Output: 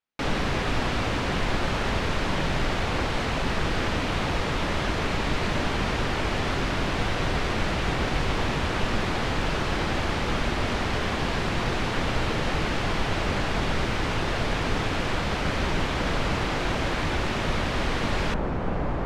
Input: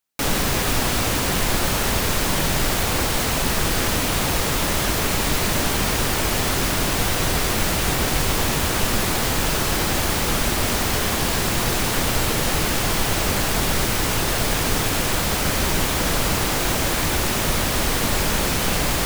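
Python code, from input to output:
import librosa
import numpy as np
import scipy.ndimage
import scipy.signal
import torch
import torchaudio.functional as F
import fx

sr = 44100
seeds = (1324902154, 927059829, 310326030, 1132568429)

y = fx.lowpass(x, sr, hz=fx.steps((0.0, 3300.0), (18.34, 1100.0)), slope=12)
y = y * librosa.db_to_amplitude(-3.5)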